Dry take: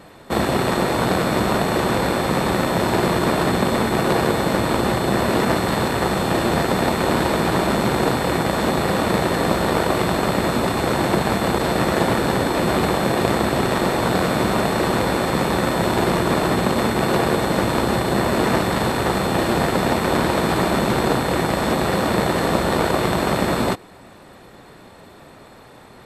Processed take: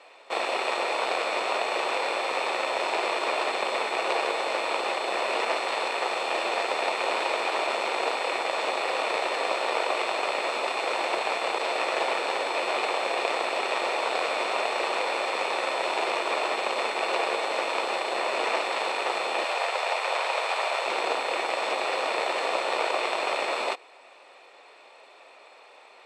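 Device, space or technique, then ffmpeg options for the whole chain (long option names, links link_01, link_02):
phone speaker on a table: -filter_complex "[0:a]highpass=frequency=490:width=0.5412,highpass=frequency=490:width=1.3066,equalizer=frequency=1600:width_type=q:width=4:gain=-6,equalizer=frequency=2500:width_type=q:width=4:gain=10,equalizer=frequency=6700:width_type=q:width=4:gain=-3,lowpass=frequency=7700:width=0.5412,lowpass=frequency=7700:width=1.3066,asettb=1/sr,asplit=3[link_01][link_02][link_03];[link_01]atrim=end=19.444[link_04];[link_02]atrim=start=19.44:end=20.86,asetpts=PTS-STARTPTS,afade=type=in:duration=0.004:curve=qsin,afade=type=out:start_time=1.416:duration=0.004:curve=qsin,highpass=frequency=480:width=0.5412,highpass=frequency=480:width=1.3066[link_05];[link_03]atrim=start=20.856[link_06];[link_04][link_05]acrossfade=duration=0.004:curve1=hsin:curve2=qsin[link_07];[link_07][link_06]acrossfade=duration=0.004:curve1=qsin:curve2=hsin,volume=-5dB"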